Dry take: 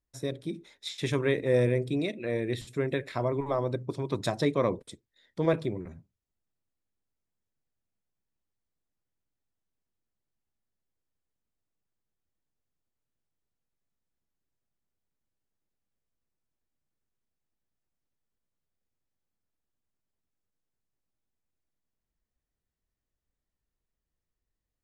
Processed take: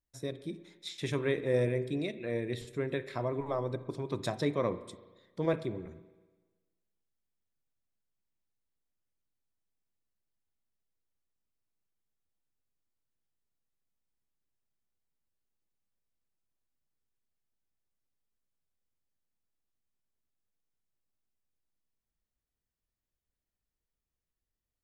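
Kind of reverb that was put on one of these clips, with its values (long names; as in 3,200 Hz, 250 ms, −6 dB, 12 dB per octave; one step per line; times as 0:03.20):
spring reverb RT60 1.3 s, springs 34/55 ms, chirp 35 ms, DRR 13.5 dB
level −4.5 dB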